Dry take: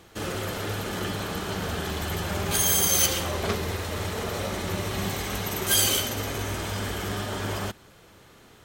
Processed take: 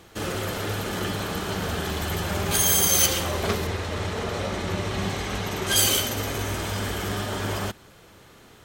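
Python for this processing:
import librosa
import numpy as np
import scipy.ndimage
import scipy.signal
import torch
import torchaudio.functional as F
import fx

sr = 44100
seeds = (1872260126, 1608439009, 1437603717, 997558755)

y = fx.air_absorb(x, sr, metres=55.0, at=(3.67, 5.76))
y = F.gain(torch.from_numpy(y), 2.0).numpy()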